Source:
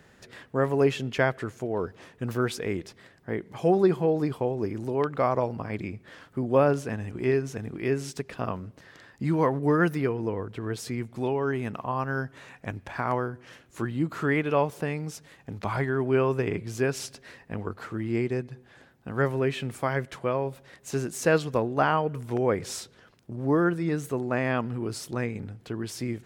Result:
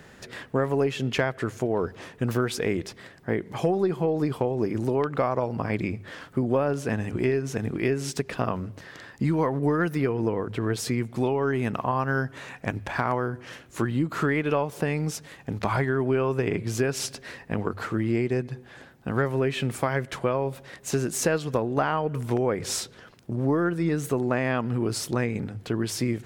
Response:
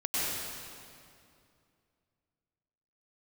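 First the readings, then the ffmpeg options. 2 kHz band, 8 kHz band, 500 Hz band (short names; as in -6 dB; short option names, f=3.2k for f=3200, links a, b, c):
+1.0 dB, +6.0 dB, +0.5 dB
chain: -af "acompressor=threshold=-28dB:ratio=6,bandreject=f=50:t=h:w=6,bandreject=f=100:t=h:w=6,aeval=exprs='0.119*(cos(1*acos(clip(val(0)/0.119,-1,1)))-cos(1*PI/2))+0.00211*(cos(4*acos(clip(val(0)/0.119,-1,1)))-cos(4*PI/2))':c=same,volume=7dB"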